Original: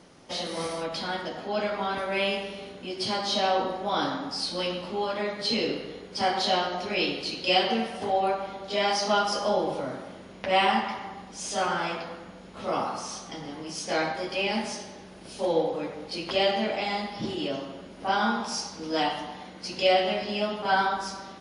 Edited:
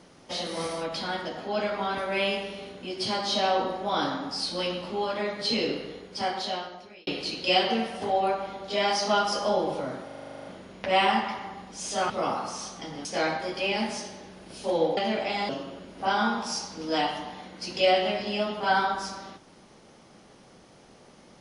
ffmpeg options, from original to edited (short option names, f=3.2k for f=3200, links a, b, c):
-filter_complex "[0:a]asplit=16[a][b][c][d][e][f][g][h][i][j][k][l][m][n][o][p];[a]atrim=end=7.07,asetpts=PTS-STARTPTS,afade=t=out:st=5.86:d=1.21[q];[b]atrim=start=7.07:end=10.092,asetpts=PTS-STARTPTS,afade=t=in:d=0.004:c=hsin[r];[c]atrim=start=10.048:end=10.092[s];[d]atrim=start=10.048:end=10.092[t];[e]atrim=start=10.048:end=10.092[u];[f]atrim=start=10.048:end=10.092[v];[g]atrim=start=10.048:end=10.092[w];[h]atrim=start=10.048:end=10.092[x];[i]atrim=start=10.048:end=10.092[y];[j]atrim=start=10.048:end=10.092[z];[k]atrim=start=10.048:end=10.092[aa];[l]atrim=start=10.048:end=11.702[ab];[m]atrim=start=12.598:end=13.552[ac];[n]atrim=start=13.798:end=15.722[ad];[o]atrim=start=16.488:end=17.012[ae];[p]atrim=start=17.508[af];[q][r]concat=n=2:v=0:a=1[ag];[ag][s]acrossfade=d=0.004:c1=hsin:c2=hsin[ah];[ah][t]acrossfade=d=0.004:c1=hsin:c2=hsin[ai];[ai][u]acrossfade=d=0.004:c1=hsin:c2=hsin[aj];[aj][v]acrossfade=d=0.004:c1=hsin:c2=hsin[ak];[ak][w]acrossfade=d=0.004:c1=hsin:c2=hsin[al];[al][x]acrossfade=d=0.004:c1=hsin:c2=hsin[am];[am][y]acrossfade=d=0.004:c1=hsin:c2=hsin[an];[an][z]acrossfade=d=0.004:c1=hsin:c2=hsin[ao];[ao][aa]acrossfade=d=0.004:c1=hsin:c2=hsin[ap];[ap][ab]acrossfade=d=0.004:c1=hsin:c2=hsin[aq];[aq][ac]acrossfade=d=0.004:c1=hsin:c2=hsin[ar];[ar][ad]acrossfade=d=0.004:c1=hsin:c2=hsin[as];[as][ae]acrossfade=d=0.004:c1=hsin:c2=hsin[at];[at][af]acrossfade=d=0.004:c1=hsin:c2=hsin"